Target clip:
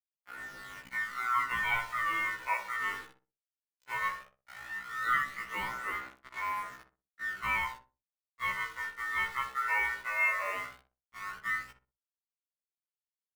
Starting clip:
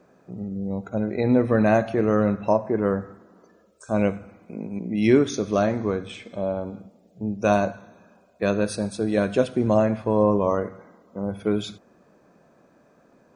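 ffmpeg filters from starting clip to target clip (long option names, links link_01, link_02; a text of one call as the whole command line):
ffmpeg -i in.wav -filter_complex "[0:a]lowpass=frequency=2100:width=0.5412,lowpass=frequency=2100:width=1.3066,acrusher=bits=5:mix=0:aa=0.000001,aeval=exprs='val(0)*sin(2*PI*1600*n/s)':channel_layout=same,aphaser=in_gain=1:out_gain=1:delay=2.3:decay=0.47:speed=0.16:type=sinusoidal,asplit=2[link_01][link_02];[link_02]adelay=62,lowpass=frequency=930:poles=1,volume=-5.5dB,asplit=2[link_03][link_04];[link_04]adelay=62,lowpass=frequency=930:poles=1,volume=0.31,asplit=2[link_05][link_06];[link_06]adelay=62,lowpass=frequency=930:poles=1,volume=0.31,asplit=2[link_07][link_08];[link_08]adelay=62,lowpass=frequency=930:poles=1,volume=0.31[link_09];[link_01][link_03][link_05][link_07][link_09]amix=inputs=5:normalize=0,afftfilt=real='re*1.73*eq(mod(b,3),0)':imag='im*1.73*eq(mod(b,3),0)':win_size=2048:overlap=0.75,volume=-8.5dB" out.wav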